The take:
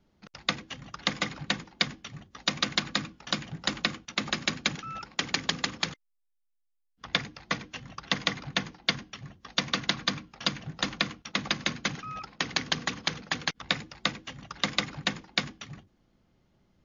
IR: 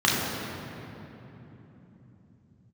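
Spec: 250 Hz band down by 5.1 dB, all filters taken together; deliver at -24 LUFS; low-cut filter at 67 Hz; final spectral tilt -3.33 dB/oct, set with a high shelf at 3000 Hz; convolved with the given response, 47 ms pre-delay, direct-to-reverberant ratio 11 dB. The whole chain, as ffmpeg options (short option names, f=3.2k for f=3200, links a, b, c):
-filter_complex "[0:a]highpass=67,equalizer=f=250:t=o:g=-7,highshelf=f=3k:g=-9,asplit=2[a][b];[1:a]atrim=start_sample=2205,adelay=47[c];[b][c]afir=irnorm=-1:irlink=0,volume=-29dB[d];[a][d]amix=inputs=2:normalize=0,volume=11dB"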